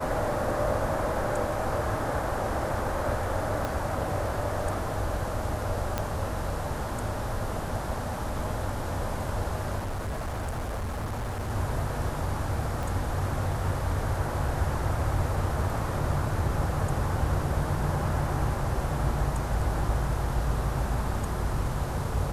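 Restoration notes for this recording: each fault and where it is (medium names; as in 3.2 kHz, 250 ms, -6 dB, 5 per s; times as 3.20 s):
3.65 s: pop
5.98 s: pop -13 dBFS
9.78–11.51 s: clipped -28.5 dBFS
12.83 s: pop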